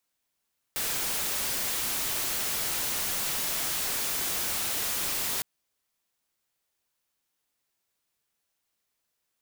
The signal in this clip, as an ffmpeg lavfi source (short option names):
-f lavfi -i "anoisesrc=c=white:a=0.0548:d=4.66:r=44100:seed=1"